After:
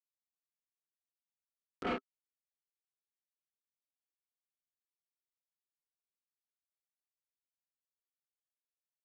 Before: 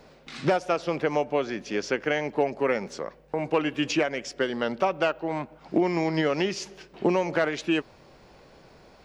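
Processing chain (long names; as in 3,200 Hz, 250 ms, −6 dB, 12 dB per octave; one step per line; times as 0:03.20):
partials spread apart or drawn together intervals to 112%
source passing by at 0:01.95, 43 m/s, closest 4.4 metres
first difference
log-companded quantiser 2 bits
low-pass filter 4,200 Hz 12 dB per octave
double-tracking delay 32 ms −7 dB
hollow resonant body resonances 270/390/1,300 Hz, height 15 dB, ringing for 35 ms
gain into a clipping stage and back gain 35.5 dB
treble cut that deepens with the level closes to 1,800 Hz
level +6.5 dB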